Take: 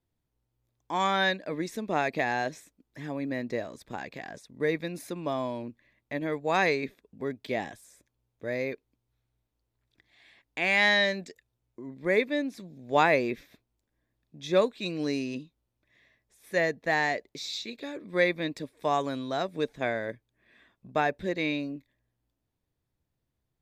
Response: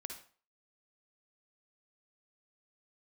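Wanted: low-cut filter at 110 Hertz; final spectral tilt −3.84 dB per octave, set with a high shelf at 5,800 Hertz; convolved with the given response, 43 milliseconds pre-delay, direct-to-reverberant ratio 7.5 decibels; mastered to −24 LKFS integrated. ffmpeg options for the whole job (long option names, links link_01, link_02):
-filter_complex "[0:a]highpass=110,highshelf=frequency=5800:gain=8.5,asplit=2[link_01][link_02];[1:a]atrim=start_sample=2205,adelay=43[link_03];[link_02][link_03]afir=irnorm=-1:irlink=0,volume=-4.5dB[link_04];[link_01][link_04]amix=inputs=2:normalize=0,volume=4dB"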